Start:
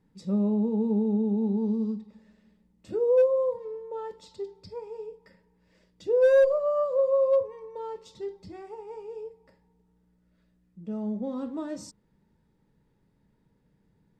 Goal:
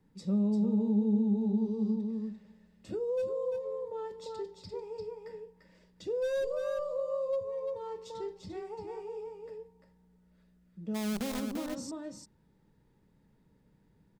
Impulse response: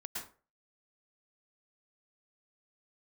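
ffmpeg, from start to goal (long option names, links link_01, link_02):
-filter_complex "[0:a]asplit=3[link_01][link_02][link_03];[link_01]afade=type=out:start_time=10.94:duration=0.02[link_04];[link_02]acrusher=bits=6:dc=4:mix=0:aa=0.000001,afade=type=in:start_time=10.94:duration=0.02,afade=type=out:start_time=11.39:duration=0.02[link_05];[link_03]afade=type=in:start_time=11.39:duration=0.02[link_06];[link_04][link_05][link_06]amix=inputs=3:normalize=0,asplit=2[link_07][link_08];[link_08]aecho=0:1:345:0.501[link_09];[link_07][link_09]amix=inputs=2:normalize=0,acrossover=split=210|3000[link_10][link_11][link_12];[link_11]acompressor=threshold=-38dB:ratio=2.5[link_13];[link_10][link_13][link_12]amix=inputs=3:normalize=0"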